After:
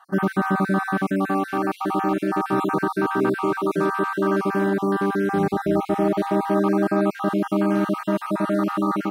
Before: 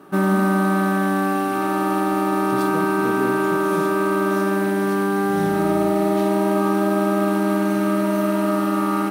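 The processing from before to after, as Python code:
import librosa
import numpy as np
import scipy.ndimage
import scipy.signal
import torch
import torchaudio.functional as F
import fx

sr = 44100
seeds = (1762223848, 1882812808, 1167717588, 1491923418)

y = fx.spec_dropout(x, sr, seeds[0], share_pct=34)
y = fx.high_shelf(y, sr, hz=6300.0, db=-11.5)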